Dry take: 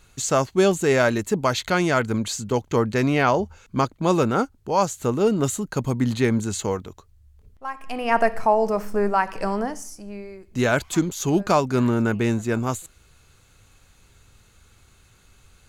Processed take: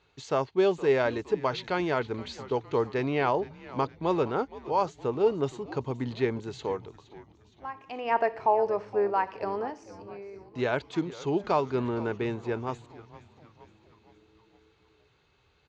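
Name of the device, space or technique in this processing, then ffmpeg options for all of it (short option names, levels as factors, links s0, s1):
frequency-shifting delay pedal into a guitar cabinet: -filter_complex "[0:a]asplit=6[s0][s1][s2][s3][s4][s5];[s1]adelay=466,afreqshift=-110,volume=0.141[s6];[s2]adelay=932,afreqshift=-220,volume=0.0794[s7];[s3]adelay=1398,afreqshift=-330,volume=0.0442[s8];[s4]adelay=1864,afreqshift=-440,volume=0.0248[s9];[s5]adelay=2330,afreqshift=-550,volume=0.014[s10];[s0][s6][s7][s8][s9][s10]amix=inputs=6:normalize=0,highpass=88,equalizer=f=100:t=q:w=4:g=-5,equalizer=f=210:t=q:w=4:g=-9,equalizer=f=420:t=q:w=4:g=6,equalizer=f=900:t=q:w=4:g=5,equalizer=f=1400:t=q:w=4:g=-3,lowpass=f=4500:w=0.5412,lowpass=f=4500:w=1.3066,volume=0.398"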